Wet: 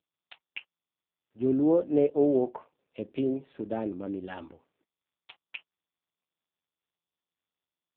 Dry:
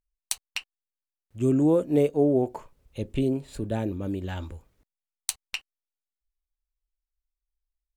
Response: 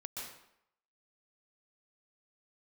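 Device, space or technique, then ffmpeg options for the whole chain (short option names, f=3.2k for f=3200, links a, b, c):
telephone: -af "highpass=250,lowpass=3.4k" -ar 8000 -c:a libopencore_amrnb -b:a 5150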